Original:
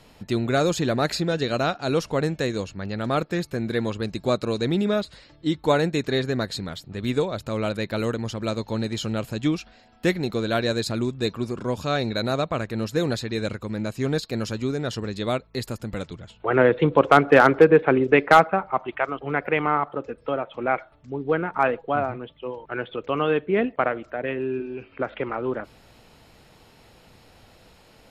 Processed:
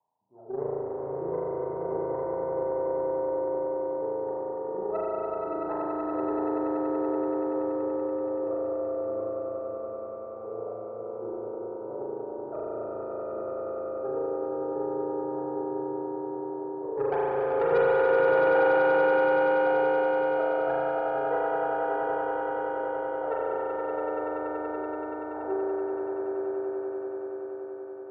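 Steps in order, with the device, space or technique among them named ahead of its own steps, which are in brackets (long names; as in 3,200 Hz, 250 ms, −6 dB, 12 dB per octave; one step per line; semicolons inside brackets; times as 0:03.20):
Butterworth low-pass 940 Hz 96 dB per octave
hum removal 73.85 Hz, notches 28
wah-wah guitar rig (LFO wah 1.4 Hz 380–2,200 Hz, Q 14; tube saturation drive 26 dB, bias 0.6; loudspeaker in its box 77–4,600 Hz, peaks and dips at 130 Hz +4 dB, 220 Hz −4 dB, 1,300 Hz +6 dB, 3,200 Hz −6 dB)
echo that builds up and dies away 95 ms, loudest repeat 8, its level −5 dB
spring reverb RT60 3.6 s, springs 36 ms, chirp 45 ms, DRR −7 dB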